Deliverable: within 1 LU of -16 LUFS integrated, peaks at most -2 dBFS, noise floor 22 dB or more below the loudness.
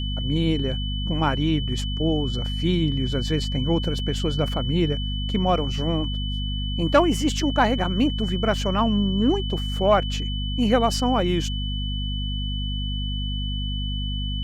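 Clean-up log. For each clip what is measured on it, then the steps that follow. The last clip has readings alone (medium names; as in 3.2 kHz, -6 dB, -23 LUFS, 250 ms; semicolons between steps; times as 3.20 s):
hum 50 Hz; highest harmonic 250 Hz; hum level -25 dBFS; steady tone 3 kHz; tone level -32 dBFS; loudness -24.0 LUFS; peak level -5.0 dBFS; loudness target -16.0 LUFS
-> de-hum 50 Hz, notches 5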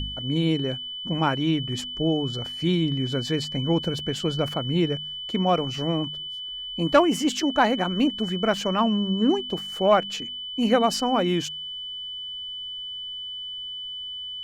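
hum not found; steady tone 3 kHz; tone level -32 dBFS
-> band-stop 3 kHz, Q 30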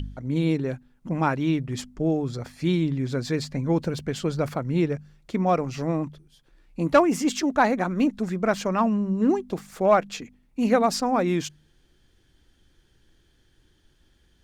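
steady tone not found; loudness -25.0 LUFS; peak level -6.0 dBFS; loudness target -16.0 LUFS
-> trim +9 dB; peak limiter -2 dBFS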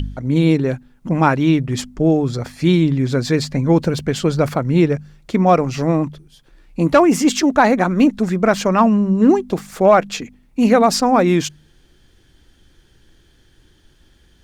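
loudness -16.5 LUFS; peak level -2.0 dBFS; noise floor -54 dBFS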